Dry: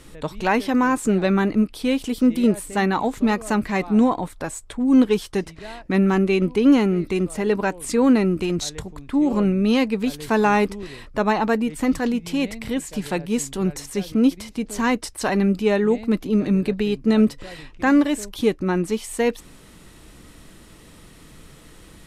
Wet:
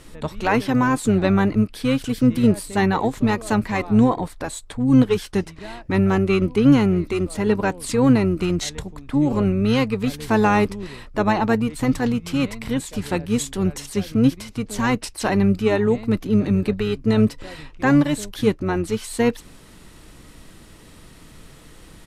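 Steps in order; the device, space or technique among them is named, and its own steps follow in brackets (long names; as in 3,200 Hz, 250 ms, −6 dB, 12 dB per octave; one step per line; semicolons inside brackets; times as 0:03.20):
octave pedal (pitch-shifted copies added −12 semitones −7 dB)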